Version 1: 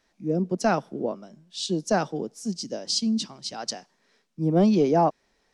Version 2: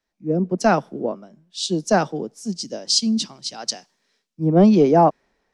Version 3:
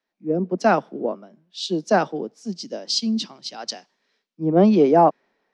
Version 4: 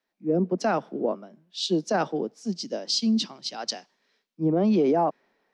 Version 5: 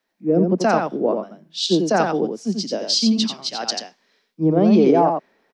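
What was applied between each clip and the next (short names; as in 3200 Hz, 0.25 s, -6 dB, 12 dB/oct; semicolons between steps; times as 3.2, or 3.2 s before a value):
three-band expander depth 40%; gain +4.5 dB
three-band isolator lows -19 dB, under 170 Hz, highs -18 dB, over 5200 Hz
limiter -15 dBFS, peak gain reduction 10 dB
echo 88 ms -5 dB; gain +6 dB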